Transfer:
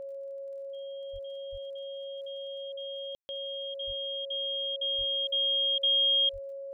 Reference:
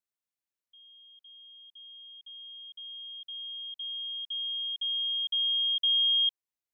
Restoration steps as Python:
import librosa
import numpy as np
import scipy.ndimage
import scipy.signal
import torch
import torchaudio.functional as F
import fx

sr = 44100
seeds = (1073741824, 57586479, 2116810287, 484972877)

y = fx.fix_declick_ar(x, sr, threshold=6.5)
y = fx.notch(y, sr, hz=550.0, q=30.0)
y = fx.fix_deplosive(y, sr, at_s=(1.12, 1.51, 3.86, 4.97, 6.32))
y = fx.fix_ambience(y, sr, seeds[0], print_start_s=0.02, print_end_s=0.52, start_s=3.15, end_s=3.29)